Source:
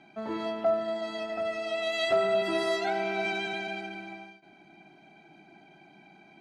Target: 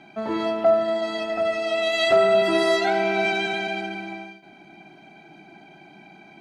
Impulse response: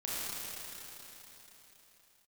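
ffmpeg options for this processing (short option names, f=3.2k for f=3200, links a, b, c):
-filter_complex "[0:a]asplit=2[a][b];[1:a]atrim=start_sample=2205,atrim=end_sample=4410[c];[b][c]afir=irnorm=-1:irlink=0,volume=-11dB[d];[a][d]amix=inputs=2:normalize=0,volume=6dB"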